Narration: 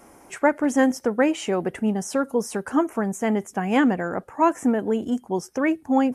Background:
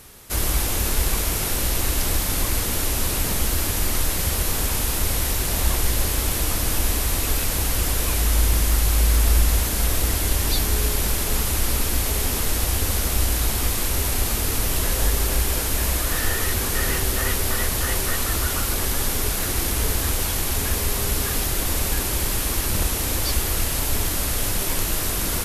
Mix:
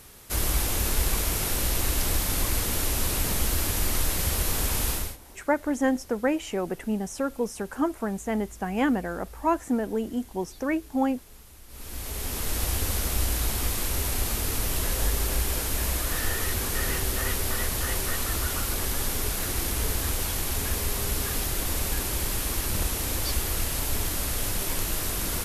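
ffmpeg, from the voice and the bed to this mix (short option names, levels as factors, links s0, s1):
-filter_complex "[0:a]adelay=5050,volume=0.562[s0];[1:a]volume=8.91,afade=t=out:st=4.9:d=0.27:silence=0.0630957,afade=t=in:st=11.68:d=0.96:silence=0.0749894[s1];[s0][s1]amix=inputs=2:normalize=0"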